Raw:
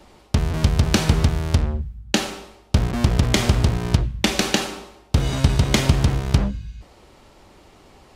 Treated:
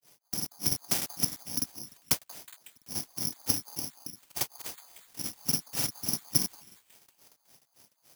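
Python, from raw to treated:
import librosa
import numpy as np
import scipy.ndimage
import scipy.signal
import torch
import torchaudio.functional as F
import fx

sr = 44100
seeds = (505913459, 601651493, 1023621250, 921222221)

p1 = fx.granulator(x, sr, seeds[0], grain_ms=193.0, per_s=3.5, spray_ms=38.0, spread_st=0)
p2 = fx.noise_vocoder(p1, sr, seeds[1], bands=4)
p3 = p2 + fx.echo_stepped(p2, sr, ms=184, hz=970.0, octaves=0.7, feedback_pct=70, wet_db=-10.0, dry=0)
p4 = (np.kron(p3[::8], np.eye(8)[0]) * 8)[:len(p3)]
p5 = fx.buffer_crackle(p4, sr, first_s=0.37, period_s=0.3, block=2048, kind='repeat')
y = p5 * librosa.db_to_amplitude(-15.0)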